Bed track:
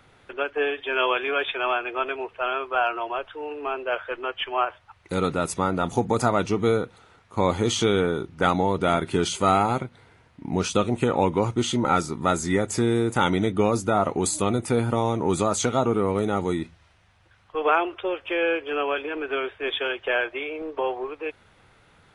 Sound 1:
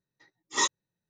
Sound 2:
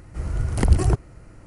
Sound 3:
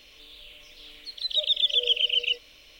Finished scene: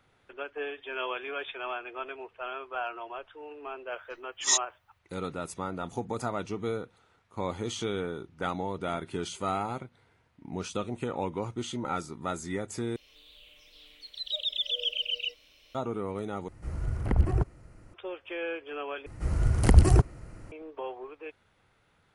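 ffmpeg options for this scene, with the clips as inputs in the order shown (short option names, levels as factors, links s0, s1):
-filter_complex "[2:a]asplit=2[s0][s1];[0:a]volume=0.282[s2];[1:a]crystalizer=i=6.5:c=0[s3];[s0]acrossover=split=2700[s4][s5];[s5]acompressor=threshold=0.00282:ratio=4:attack=1:release=60[s6];[s4][s6]amix=inputs=2:normalize=0[s7];[s2]asplit=4[s8][s9][s10][s11];[s8]atrim=end=12.964[s12];[3:a]atrim=end=2.79,asetpts=PTS-STARTPTS,volume=0.422[s13];[s9]atrim=start=15.746:end=16.484[s14];[s7]atrim=end=1.46,asetpts=PTS-STARTPTS,volume=0.447[s15];[s10]atrim=start=17.936:end=19.064[s16];[s1]atrim=end=1.46,asetpts=PTS-STARTPTS,volume=0.944[s17];[s11]atrim=start=20.516[s18];[s3]atrim=end=1.09,asetpts=PTS-STARTPTS,volume=0.266,afade=t=in:d=0.004:c=hsin,afade=t=out:st=1.086:d=0.004:c=hsin,adelay=3900[s19];[s12][s13]acrossfade=d=0.004:c1=hsin:c2=hsin[s20];[s20][s14]acrossfade=d=0.004:c1=hsin:c2=hsin[s21];[s21][s15]acrossfade=d=0.004:c1=hsin:c2=hsin[s22];[s22][s16]acrossfade=d=0.004:c1=hsin:c2=hsin[s23];[s23][s17]acrossfade=d=0.004:c1=hsin:c2=hsin[s24];[s24][s18]acrossfade=d=0.004:c1=hsin:c2=hsin[s25];[s25][s19]amix=inputs=2:normalize=0"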